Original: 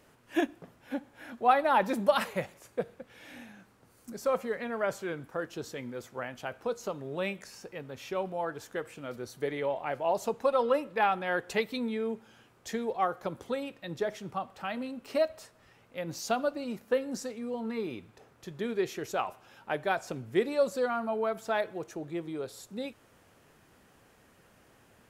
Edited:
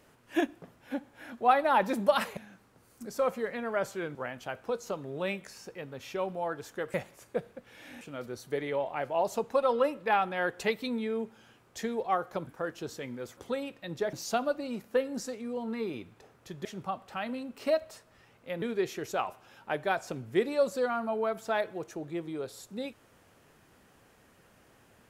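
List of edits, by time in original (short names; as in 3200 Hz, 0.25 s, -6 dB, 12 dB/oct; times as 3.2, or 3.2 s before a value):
2.37–3.44 move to 8.91
5.22–6.12 move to 13.37
14.13–16.1 move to 18.62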